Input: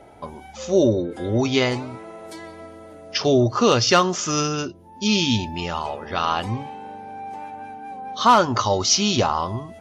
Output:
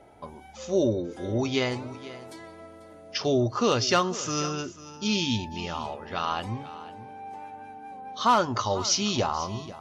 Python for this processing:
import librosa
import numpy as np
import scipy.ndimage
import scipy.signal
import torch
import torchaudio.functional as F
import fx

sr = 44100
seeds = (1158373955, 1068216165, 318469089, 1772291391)

y = x + 10.0 ** (-16.5 / 20.0) * np.pad(x, (int(492 * sr / 1000.0), 0))[:len(x)]
y = y * 10.0 ** (-6.5 / 20.0)